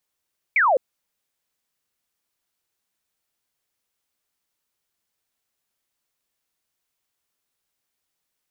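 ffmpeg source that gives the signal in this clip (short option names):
-f lavfi -i "aevalsrc='0.188*clip(t/0.002,0,1)*clip((0.21-t)/0.002,0,1)*sin(2*PI*2400*0.21/log(480/2400)*(exp(log(480/2400)*t/0.21)-1))':d=0.21:s=44100"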